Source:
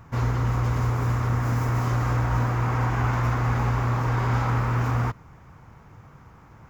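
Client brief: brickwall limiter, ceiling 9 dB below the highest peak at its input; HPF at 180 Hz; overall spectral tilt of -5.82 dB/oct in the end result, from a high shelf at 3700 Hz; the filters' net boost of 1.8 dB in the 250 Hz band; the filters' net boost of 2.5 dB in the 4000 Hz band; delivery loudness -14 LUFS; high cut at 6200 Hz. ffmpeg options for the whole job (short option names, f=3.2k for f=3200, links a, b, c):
-af "highpass=180,lowpass=6.2k,equalizer=f=250:t=o:g=4.5,highshelf=f=3.7k:g=-3.5,equalizer=f=4k:t=o:g=6.5,volume=18dB,alimiter=limit=-5.5dB:level=0:latency=1"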